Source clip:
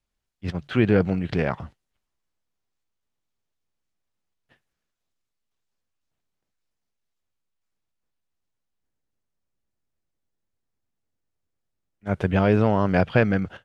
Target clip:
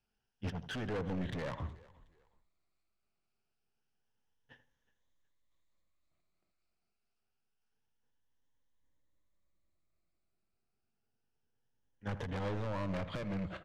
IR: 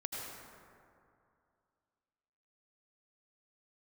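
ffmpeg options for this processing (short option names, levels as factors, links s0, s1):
-filter_complex "[0:a]afftfilt=real='re*pow(10,10/40*sin(2*PI*(1.1*log(max(b,1)*sr/1024/100)/log(2)-(0.27)*(pts-256)/sr)))':imag='im*pow(10,10/40*sin(2*PI*(1.1*log(max(b,1)*sr/1024/100)/log(2)-(0.27)*(pts-256)/sr)))':win_size=1024:overlap=0.75,acompressor=threshold=0.0891:ratio=20,volume=31.6,asoftclip=hard,volume=0.0316,aemphasis=mode=production:type=50kf,alimiter=level_in=1.88:limit=0.0631:level=0:latency=1:release=275,volume=0.531,asplit=2[s0][s1];[s1]adelay=81,lowpass=f=1700:p=1,volume=0.266,asplit=2[s2][s3];[s3]adelay=81,lowpass=f=1700:p=1,volume=0.19[s4];[s2][s4]amix=inputs=2:normalize=0[s5];[s0][s5]amix=inputs=2:normalize=0,adynamicsmooth=sensitivity=5:basefreq=3900,asplit=2[s6][s7];[s7]asplit=2[s8][s9];[s8]adelay=367,afreqshift=-47,volume=0.0841[s10];[s9]adelay=734,afreqshift=-94,volume=0.0251[s11];[s10][s11]amix=inputs=2:normalize=0[s12];[s6][s12]amix=inputs=2:normalize=0,volume=0.841"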